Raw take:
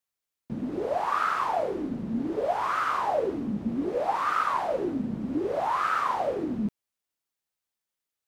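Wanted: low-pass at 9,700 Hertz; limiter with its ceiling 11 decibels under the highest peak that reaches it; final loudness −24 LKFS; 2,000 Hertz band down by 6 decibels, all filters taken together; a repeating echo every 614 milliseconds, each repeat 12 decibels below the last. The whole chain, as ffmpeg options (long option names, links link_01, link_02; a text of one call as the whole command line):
ffmpeg -i in.wav -af "lowpass=9700,equalizer=frequency=2000:width_type=o:gain=-9,alimiter=level_in=2.5dB:limit=-24dB:level=0:latency=1,volume=-2.5dB,aecho=1:1:614|1228|1842:0.251|0.0628|0.0157,volume=10dB" out.wav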